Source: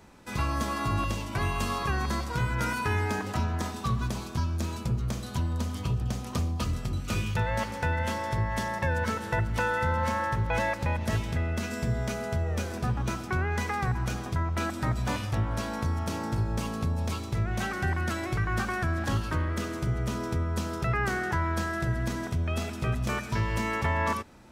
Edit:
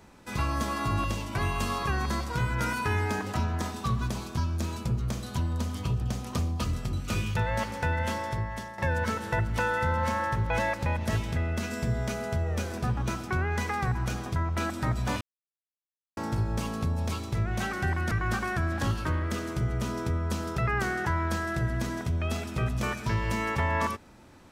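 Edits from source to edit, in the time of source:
0:08.16–0:08.78: fade out, to −13 dB
0:15.21–0:16.17: silence
0:18.11–0:18.37: remove

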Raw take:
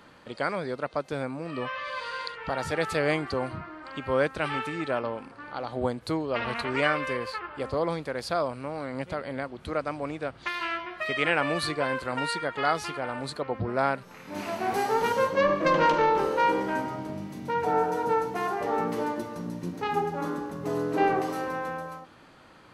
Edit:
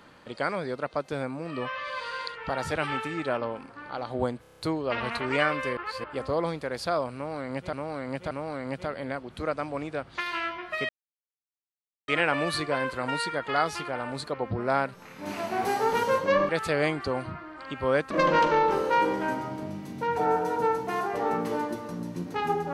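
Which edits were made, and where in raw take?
0:02.75–0:04.37: move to 0:15.58
0:06.03: stutter 0.03 s, 7 plays
0:07.21–0:07.48: reverse
0:08.59–0:09.17: repeat, 3 plays
0:11.17: splice in silence 1.19 s

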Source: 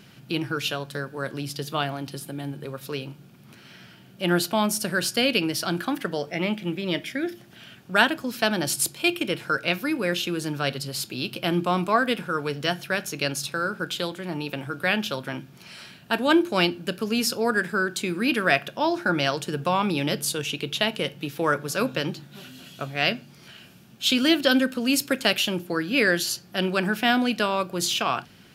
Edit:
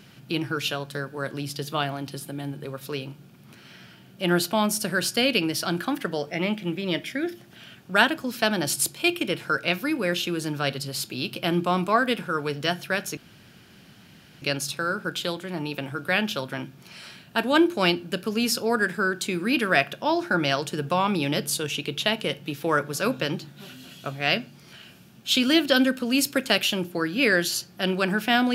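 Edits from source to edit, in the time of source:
0:13.17: splice in room tone 1.25 s

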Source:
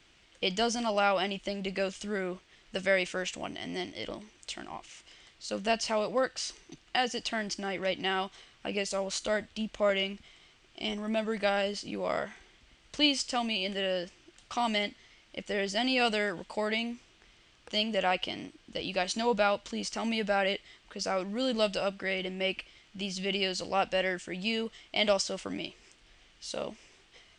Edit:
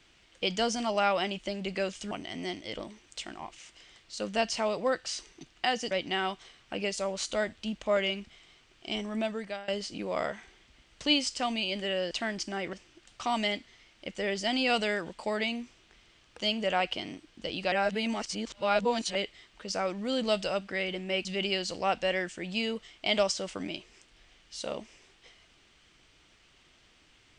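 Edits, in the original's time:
0:02.11–0:03.42: remove
0:07.22–0:07.84: move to 0:14.04
0:11.12–0:11.61: fade out, to −22.5 dB
0:19.03–0:20.46: reverse
0:22.56–0:23.15: remove

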